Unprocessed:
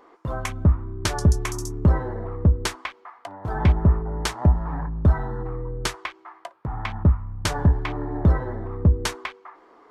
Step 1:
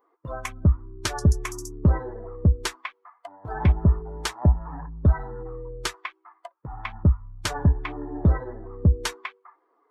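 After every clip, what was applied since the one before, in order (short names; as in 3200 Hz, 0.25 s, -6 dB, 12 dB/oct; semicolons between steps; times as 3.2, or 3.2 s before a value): per-bin expansion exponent 1.5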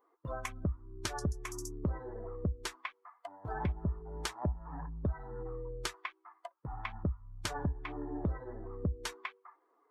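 compressor 3:1, threshold -29 dBFS, peak gain reduction 12 dB; gain -5 dB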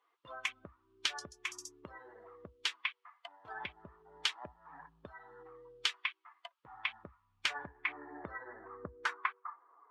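band-pass sweep 3000 Hz -> 1100 Hz, 6.97–9.81; gain +12 dB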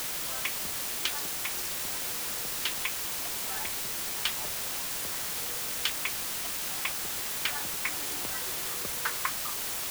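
requantised 6-bit, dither triangular; gain +2 dB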